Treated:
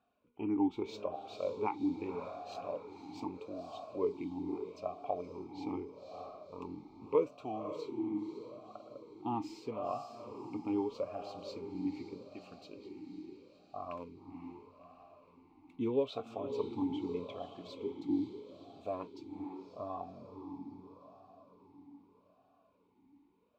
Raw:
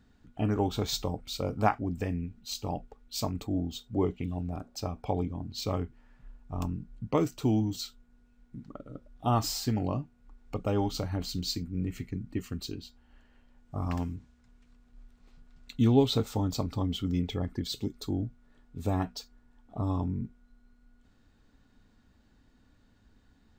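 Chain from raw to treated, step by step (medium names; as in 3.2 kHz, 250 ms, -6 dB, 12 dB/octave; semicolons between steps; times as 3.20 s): 13.93–15.76 s: dead-time distortion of 0.12 ms; echo that smears into a reverb 531 ms, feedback 55%, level -7.5 dB; talking filter a-u 0.8 Hz; trim +4.5 dB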